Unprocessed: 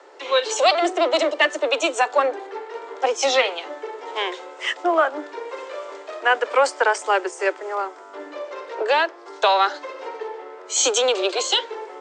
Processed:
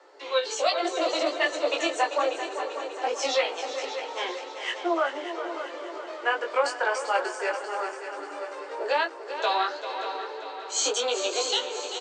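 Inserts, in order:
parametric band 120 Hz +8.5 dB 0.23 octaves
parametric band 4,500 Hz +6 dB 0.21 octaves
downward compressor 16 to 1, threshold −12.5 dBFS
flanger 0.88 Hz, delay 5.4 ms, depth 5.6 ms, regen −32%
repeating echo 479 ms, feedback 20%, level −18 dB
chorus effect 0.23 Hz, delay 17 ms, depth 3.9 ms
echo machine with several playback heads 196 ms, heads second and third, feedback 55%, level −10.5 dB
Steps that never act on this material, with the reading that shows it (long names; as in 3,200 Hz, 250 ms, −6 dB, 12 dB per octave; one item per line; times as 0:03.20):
parametric band 120 Hz: nothing at its input below 240 Hz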